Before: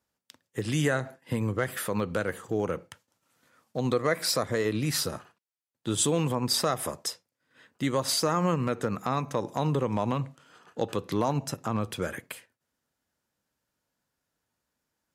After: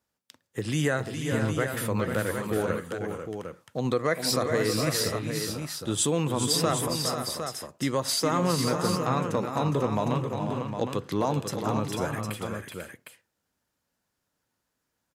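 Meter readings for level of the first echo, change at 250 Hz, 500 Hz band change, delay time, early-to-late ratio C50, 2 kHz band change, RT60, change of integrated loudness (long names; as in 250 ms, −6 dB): −8.0 dB, +2.0 dB, +2.0 dB, 410 ms, no reverb audible, +2.0 dB, no reverb audible, +1.0 dB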